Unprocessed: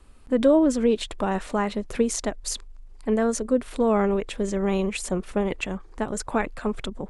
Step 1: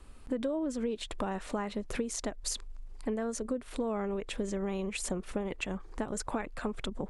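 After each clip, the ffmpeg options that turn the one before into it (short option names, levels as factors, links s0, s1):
-af "acompressor=threshold=0.0282:ratio=6"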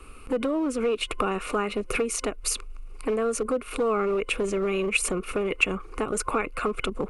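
-filter_complex "[0:a]superequalizer=6b=1.58:7b=2.24:10b=3.16:12b=3.55:16b=2.24,acrossover=split=570|3700[s0][s1][s2];[s0]volume=29.9,asoftclip=hard,volume=0.0335[s3];[s3][s1][s2]amix=inputs=3:normalize=0,volume=1.78"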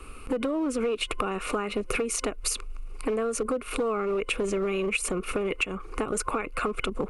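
-af "acompressor=threshold=0.0447:ratio=6,volume=1.33"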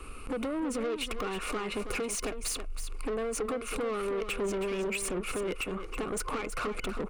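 -af "asoftclip=type=tanh:threshold=0.0335,aecho=1:1:322:0.335"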